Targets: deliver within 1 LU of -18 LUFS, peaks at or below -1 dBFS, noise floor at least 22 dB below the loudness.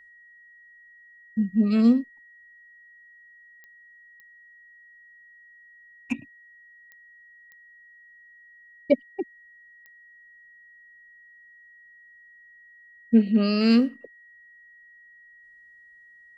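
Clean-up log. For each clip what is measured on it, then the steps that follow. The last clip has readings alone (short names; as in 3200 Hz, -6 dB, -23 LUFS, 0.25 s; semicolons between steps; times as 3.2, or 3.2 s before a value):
clicks 5; steady tone 1900 Hz; tone level -50 dBFS; loudness -23.5 LUFS; peak -7.0 dBFS; loudness target -18.0 LUFS
-> de-click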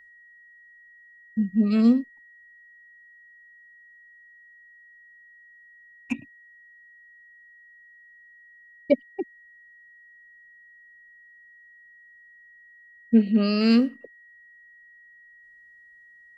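clicks 0; steady tone 1900 Hz; tone level -50 dBFS
-> notch 1900 Hz, Q 30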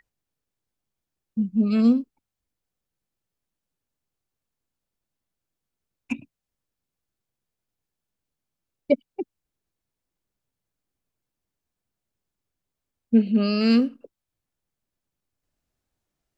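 steady tone none; loudness -22.0 LUFS; peak -7.0 dBFS; loudness target -18.0 LUFS
-> gain +4 dB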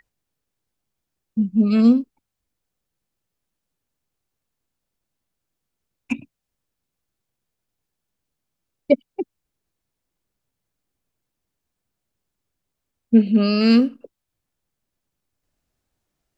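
loudness -18.0 LUFS; peak -3.0 dBFS; noise floor -82 dBFS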